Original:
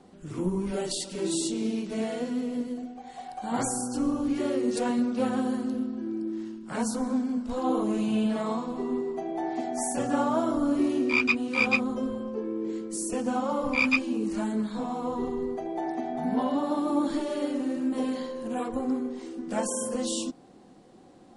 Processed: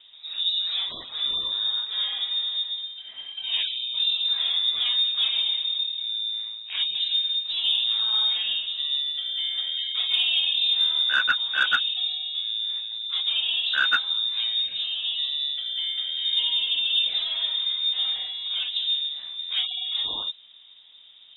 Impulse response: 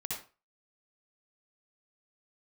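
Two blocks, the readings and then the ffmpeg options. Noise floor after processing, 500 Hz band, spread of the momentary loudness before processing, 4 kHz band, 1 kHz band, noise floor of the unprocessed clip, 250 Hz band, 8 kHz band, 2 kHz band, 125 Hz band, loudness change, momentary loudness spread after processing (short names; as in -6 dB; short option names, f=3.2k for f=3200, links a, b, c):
-49 dBFS, under -20 dB, 9 LU, +23.5 dB, -6.0 dB, -52 dBFS, under -30 dB, under -20 dB, +3.5 dB, under -20 dB, +5.5 dB, 7 LU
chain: -af "lowpass=f=3.3k:t=q:w=0.5098,lowpass=f=3.3k:t=q:w=0.6013,lowpass=f=3.3k:t=q:w=0.9,lowpass=f=3.3k:t=q:w=2.563,afreqshift=-3900,acontrast=82,volume=-4.5dB"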